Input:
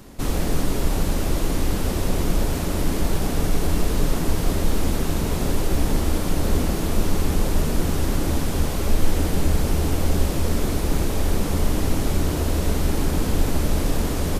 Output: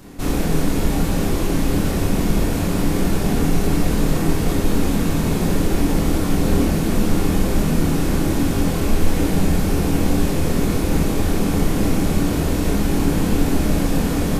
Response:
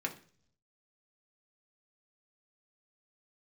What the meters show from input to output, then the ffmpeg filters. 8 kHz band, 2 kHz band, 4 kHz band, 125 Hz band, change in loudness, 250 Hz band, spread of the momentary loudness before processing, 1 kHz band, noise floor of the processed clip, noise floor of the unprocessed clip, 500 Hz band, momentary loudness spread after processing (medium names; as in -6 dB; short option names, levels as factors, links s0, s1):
+1.5 dB, +4.0 dB, +1.5 dB, +3.0 dB, +4.0 dB, +7.0 dB, 2 LU, +3.0 dB, -21 dBFS, -25 dBFS, +4.0 dB, 1 LU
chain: -filter_complex "[0:a]asplit=2[s0][s1];[1:a]atrim=start_sample=2205,lowshelf=f=260:g=7,adelay=25[s2];[s1][s2]afir=irnorm=-1:irlink=0,volume=0.75[s3];[s0][s3]amix=inputs=2:normalize=0"